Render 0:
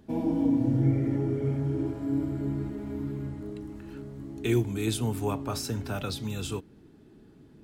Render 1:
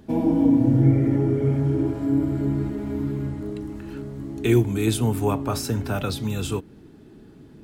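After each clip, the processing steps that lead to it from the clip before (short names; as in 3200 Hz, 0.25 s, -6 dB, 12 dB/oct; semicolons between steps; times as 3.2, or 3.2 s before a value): dynamic EQ 4900 Hz, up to -4 dB, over -50 dBFS, Q 0.71; gain +7 dB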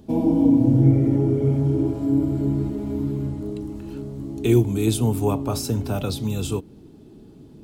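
bell 1700 Hz -11 dB 0.98 oct; gain +1.5 dB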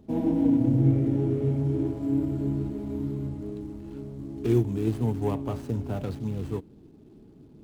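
median filter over 25 samples; gain -5.5 dB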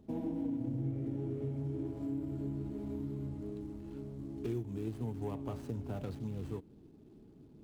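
compressor 3:1, threshold -30 dBFS, peak gain reduction 10.5 dB; gain -6 dB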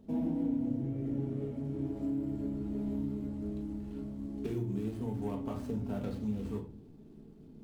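shoebox room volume 330 m³, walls furnished, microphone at 1.6 m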